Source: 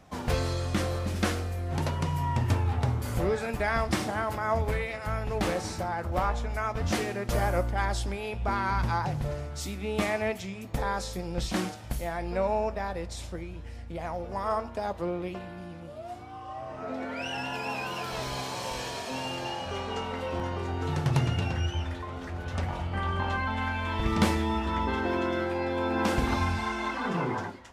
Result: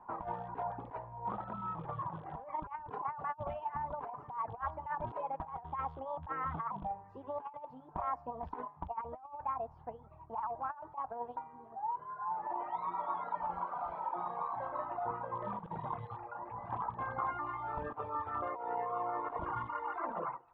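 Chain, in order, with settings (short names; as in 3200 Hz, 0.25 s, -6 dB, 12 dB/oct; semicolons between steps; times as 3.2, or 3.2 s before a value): rattling part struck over -27 dBFS, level -24 dBFS; ladder low-pass 760 Hz, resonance 65%; on a send at -22 dB: reverb, pre-delay 50 ms; on the sum: reverb removal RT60 1.3 s; speed mistake 33 rpm record played at 45 rpm; resonant low shelf 130 Hz -8.5 dB, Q 1.5; negative-ratio compressor -40 dBFS, ratio -0.5; bell 250 Hz -14.5 dB 2.4 oct; gain +8 dB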